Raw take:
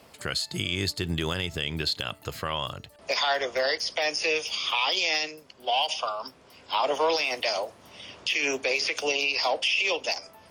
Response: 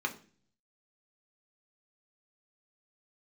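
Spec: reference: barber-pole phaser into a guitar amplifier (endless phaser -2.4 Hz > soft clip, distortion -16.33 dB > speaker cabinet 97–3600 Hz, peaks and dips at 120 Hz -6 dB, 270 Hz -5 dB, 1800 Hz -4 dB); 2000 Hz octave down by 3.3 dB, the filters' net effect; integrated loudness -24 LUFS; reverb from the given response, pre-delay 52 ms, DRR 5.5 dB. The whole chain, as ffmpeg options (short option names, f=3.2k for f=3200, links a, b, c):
-filter_complex "[0:a]equalizer=f=2k:t=o:g=-3,asplit=2[a][b];[1:a]atrim=start_sample=2205,adelay=52[c];[b][c]afir=irnorm=-1:irlink=0,volume=-11dB[d];[a][d]amix=inputs=2:normalize=0,asplit=2[e][f];[f]afreqshift=-2.4[g];[e][g]amix=inputs=2:normalize=1,asoftclip=threshold=-22.5dB,highpass=97,equalizer=f=120:t=q:w=4:g=-6,equalizer=f=270:t=q:w=4:g=-5,equalizer=f=1.8k:t=q:w=4:g=-4,lowpass=f=3.6k:w=0.5412,lowpass=f=3.6k:w=1.3066,volume=9.5dB"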